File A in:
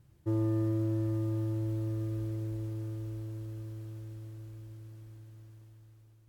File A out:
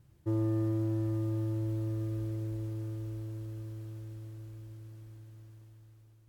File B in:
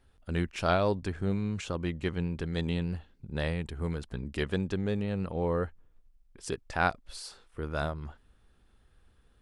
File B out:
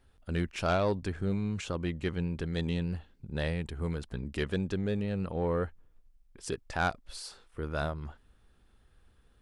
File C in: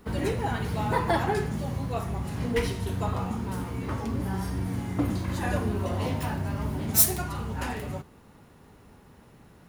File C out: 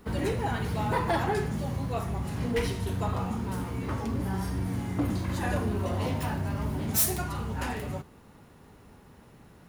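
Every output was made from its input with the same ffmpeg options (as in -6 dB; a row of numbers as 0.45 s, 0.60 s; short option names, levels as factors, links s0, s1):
-af "asoftclip=type=tanh:threshold=0.119"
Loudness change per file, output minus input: -0.5 LU, -1.0 LU, -2.0 LU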